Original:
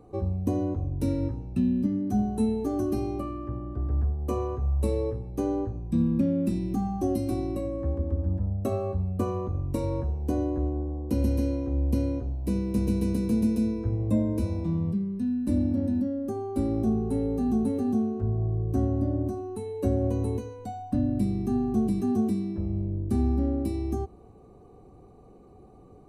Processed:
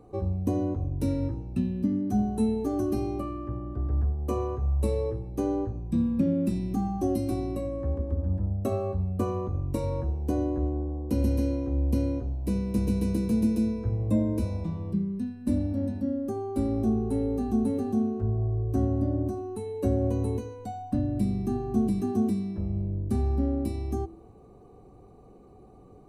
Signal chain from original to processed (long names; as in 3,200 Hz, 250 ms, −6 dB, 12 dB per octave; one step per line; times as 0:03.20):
hum removal 82.58 Hz, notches 4